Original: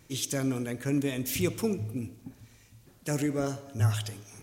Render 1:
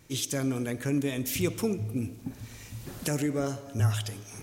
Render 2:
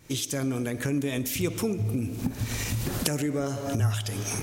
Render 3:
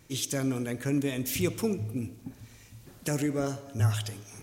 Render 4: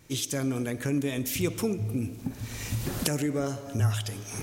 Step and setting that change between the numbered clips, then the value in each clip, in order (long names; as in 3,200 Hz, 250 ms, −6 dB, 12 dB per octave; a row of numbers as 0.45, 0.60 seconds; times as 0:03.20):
camcorder AGC, rising by: 14, 88, 5.4, 35 dB per second